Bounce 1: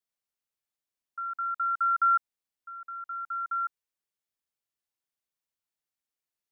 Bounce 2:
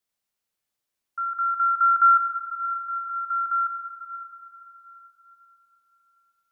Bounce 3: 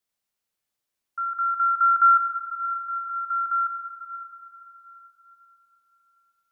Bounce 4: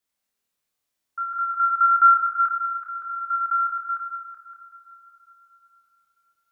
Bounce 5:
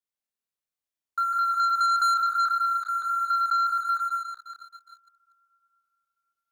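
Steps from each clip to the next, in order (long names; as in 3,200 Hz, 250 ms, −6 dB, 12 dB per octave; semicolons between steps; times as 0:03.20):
convolution reverb RT60 4.5 s, pre-delay 9 ms, DRR 4.5 dB; level +6 dB
no processing that can be heard
feedback delay that plays each chunk backwards 189 ms, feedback 41%, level −8 dB; on a send: flutter between parallel walls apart 4.6 metres, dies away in 0.37 s
leveller curve on the samples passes 3; downward compressor 2.5 to 1, threshold −17 dBFS, peak gain reduction 5.5 dB; level −6.5 dB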